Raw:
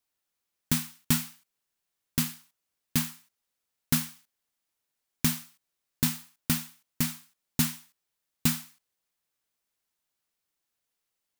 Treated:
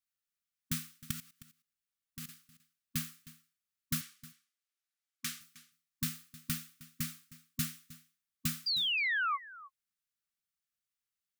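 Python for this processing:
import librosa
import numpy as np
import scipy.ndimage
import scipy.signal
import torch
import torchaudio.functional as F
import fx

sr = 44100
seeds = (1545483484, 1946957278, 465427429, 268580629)

y = fx.level_steps(x, sr, step_db=17, at=(1.11, 2.29))
y = fx.weighting(y, sr, curve='A', at=(4.01, 5.41))
y = fx.spec_paint(y, sr, seeds[0], shape='fall', start_s=8.66, length_s=0.95, low_hz=650.0, high_hz=4900.0, level_db=-23.0)
y = fx.brickwall_bandstop(y, sr, low_hz=250.0, high_hz=1100.0)
y = y + 10.0 ** (-18.5 / 20.0) * np.pad(y, (int(312 * sr / 1000.0), 0))[:len(y)]
y = F.gain(torch.from_numpy(y), -8.5).numpy()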